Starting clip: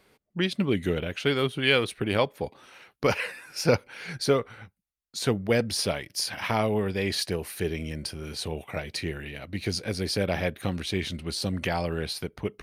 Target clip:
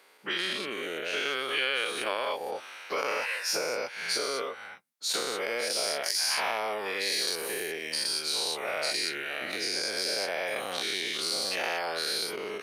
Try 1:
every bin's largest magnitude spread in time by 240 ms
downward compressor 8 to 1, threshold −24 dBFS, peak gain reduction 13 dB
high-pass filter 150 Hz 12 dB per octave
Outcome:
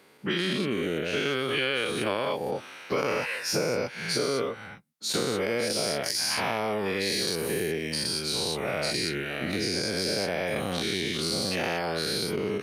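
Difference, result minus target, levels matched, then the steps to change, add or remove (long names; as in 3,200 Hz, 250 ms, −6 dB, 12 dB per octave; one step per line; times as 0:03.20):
125 Hz band +18.5 dB
change: high-pass filter 580 Hz 12 dB per octave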